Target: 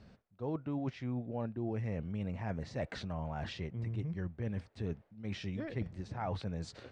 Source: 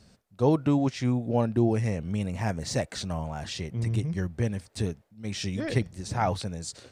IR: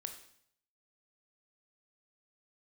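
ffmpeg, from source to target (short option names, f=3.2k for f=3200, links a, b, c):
-af "lowpass=2.7k,areverse,acompressor=threshold=-35dB:ratio=6,areverse"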